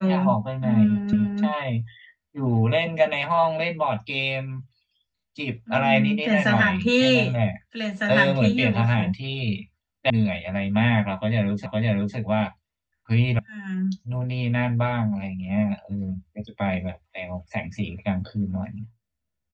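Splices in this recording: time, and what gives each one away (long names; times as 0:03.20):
0:01.13: the same again, the last 0.29 s
0:10.10: cut off before it has died away
0:11.66: the same again, the last 0.51 s
0:13.39: cut off before it has died away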